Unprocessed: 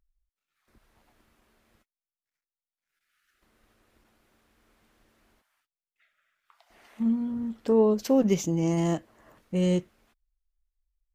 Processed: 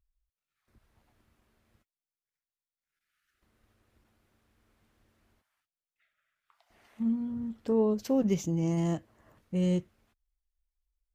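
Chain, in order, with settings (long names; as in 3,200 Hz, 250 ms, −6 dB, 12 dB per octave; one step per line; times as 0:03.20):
parametric band 90 Hz +9.5 dB 1.8 octaves
level −6.5 dB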